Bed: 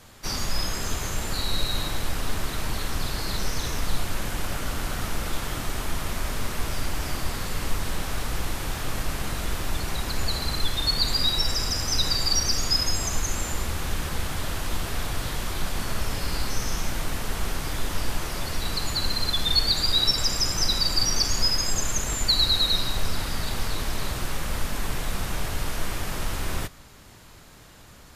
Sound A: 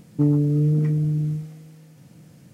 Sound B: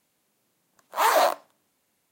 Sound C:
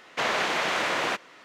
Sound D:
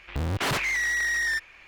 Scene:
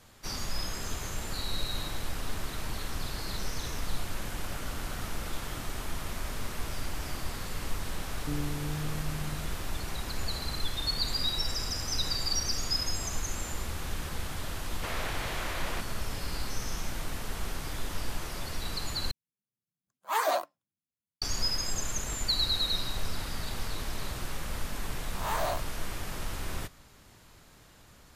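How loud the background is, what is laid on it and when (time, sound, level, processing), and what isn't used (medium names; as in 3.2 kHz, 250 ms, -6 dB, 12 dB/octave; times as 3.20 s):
bed -7 dB
8.08 s: add A -17 dB
14.65 s: add C -11.5 dB
19.11 s: replace with B -6 dB + expander on every frequency bin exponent 1.5
24.27 s: add B -13.5 dB + reverse spectral sustain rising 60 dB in 0.41 s
not used: D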